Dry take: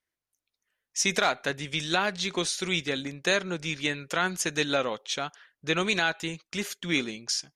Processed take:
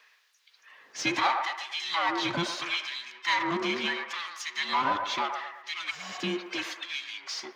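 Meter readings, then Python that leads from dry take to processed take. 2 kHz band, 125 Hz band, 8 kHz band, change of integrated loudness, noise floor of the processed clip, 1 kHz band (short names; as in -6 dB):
-2.5 dB, -7.5 dB, -10.0 dB, -2.0 dB, -65 dBFS, +4.0 dB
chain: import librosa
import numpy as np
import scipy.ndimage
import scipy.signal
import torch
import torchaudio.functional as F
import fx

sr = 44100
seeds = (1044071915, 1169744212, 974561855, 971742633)

p1 = fx.band_invert(x, sr, width_hz=500)
p2 = fx.spec_repair(p1, sr, seeds[0], start_s=5.93, length_s=0.22, low_hz=230.0, high_hz=8200.0, source='after')
p3 = scipy.signal.sosfilt(scipy.signal.butter(2, 58.0, 'highpass', fs=sr, output='sos'), p2)
p4 = fx.high_shelf(p3, sr, hz=7200.0, db=11.5)
p5 = fx.level_steps(p4, sr, step_db=22)
p6 = p4 + (p5 * 10.0 ** (-2.0 / 20.0))
p7 = fx.power_curve(p6, sr, exponent=0.5)
p8 = fx.filter_lfo_highpass(p7, sr, shape='sine', hz=0.75, low_hz=210.0, high_hz=3200.0, q=0.76)
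p9 = fx.air_absorb(p8, sr, metres=240.0)
p10 = p9 + fx.echo_wet_bandpass(p9, sr, ms=114, feedback_pct=44, hz=910.0, wet_db=-5.0, dry=0)
y = p10 * 10.0 ** (-8.0 / 20.0)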